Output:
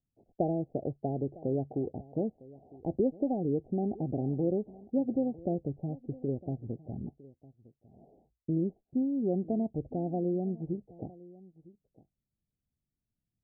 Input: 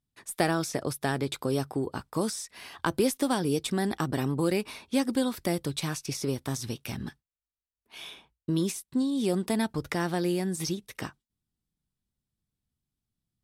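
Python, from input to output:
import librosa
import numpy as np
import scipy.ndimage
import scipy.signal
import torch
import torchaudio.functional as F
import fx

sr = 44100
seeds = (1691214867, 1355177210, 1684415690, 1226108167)

p1 = scipy.signal.sosfilt(scipy.signal.butter(16, 770.0, 'lowpass', fs=sr, output='sos'), x)
p2 = p1 + fx.echo_single(p1, sr, ms=956, db=-20.5, dry=0)
y = F.gain(torch.from_numpy(p2), -2.5).numpy()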